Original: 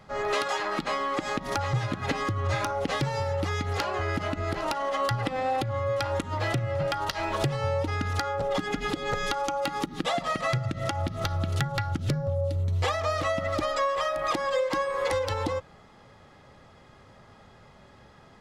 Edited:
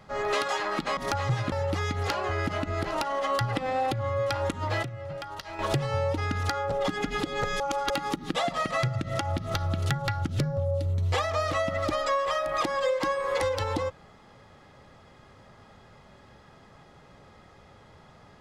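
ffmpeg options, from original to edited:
-filter_complex "[0:a]asplit=7[a][b][c][d][e][f][g];[a]atrim=end=0.972[h];[b]atrim=start=1.408:end=1.962[i];[c]atrim=start=3.218:end=6.532[j];[d]atrim=start=6.528:end=7.292,asetpts=PTS-STARTPTS,volume=-9dB[k];[e]atrim=start=7.288:end=9.302[l];[f]atrim=start=9.298:end=9.602,asetpts=PTS-STARTPTS,areverse[m];[g]atrim=start=9.598[n];[h][i]acrossfade=d=0.004:c1=hsin:c2=hsin[o];[o][j]acrossfade=d=0.004:c1=hsin:c2=hsin[p];[p][k]acrossfade=d=0.004:c1=hsin:c2=hsin[q];[q][l]acrossfade=d=0.004:c1=hsin:c2=hsin[r];[r][m]acrossfade=d=0.004:c1=hsin:c2=hsin[s];[s][n]acrossfade=d=0.004:c1=hsin:c2=hsin"

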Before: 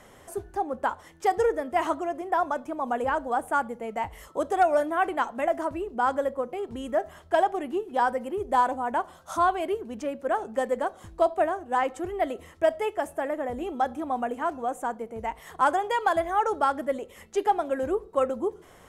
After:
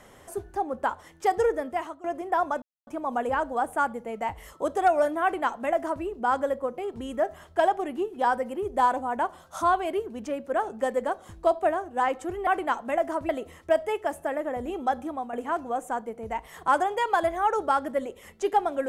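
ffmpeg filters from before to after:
-filter_complex "[0:a]asplit=6[a][b][c][d][e][f];[a]atrim=end=2.04,asetpts=PTS-STARTPTS,afade=t=out:st=1.67:d=0.37:c=qua:silence=0.141254[g];[b]atrim=start=2.04:end=2.62,asetpts=PTS-STARTPTS,afade=t=in:d=0.004:c=hsin:silence=0.141254,afade=t=out:st=0.576:d=0.004:c=hsin,apad=pad_dur=0.25[h];[c]atrim=start=2.62:end=12.222,asetpts=PTS-STARTPTS,afade=t=in:d=0.004:c=hsin[i];[d]atrim=start=4.968:end=5.792[j];[e]atrim=start=12.218:end=14.26,asetpts=PTS-STARTPTS,afade=t=out:st=1.742:d=0.3:silence=0.334965[k];[f]atrim=start=14.26,asetpts=PTS-STARTPTS,afade=t=in:d=0.004:c=hsin:silence=0.334965[l];[g][h][i]concat=n=3:v=0:a=1[m];[m][j]acrossfade=d=0.004:c1=hsin:c2=hsin[n];[k][l]concat=n=2:v=0:a=1[o];[n][o]acrossfade=d=0.004:c1=hsin:c2=hsin"

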